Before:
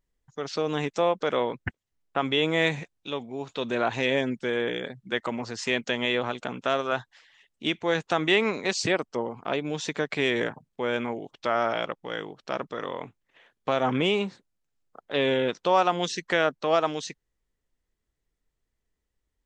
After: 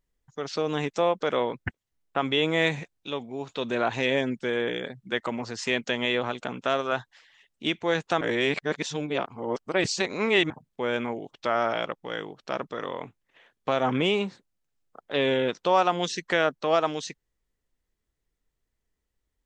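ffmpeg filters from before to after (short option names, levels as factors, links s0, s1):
-filter_complex "[0:a]asplit=3[s0][s1][s2];[s0]atrim=end=8.212[s3];[s1]atrim=start=8.208:end=10.502,asetpts=PTS-STARTPTS,areverse[s4];[s2]atrim=start=10.498[s5];[s3][s4]acrossfade=d=0.004:c1=hsin:c2=hsin[s6];[s6][s5]acrossfade=d=0.004:c1=hsin:c2=hsin"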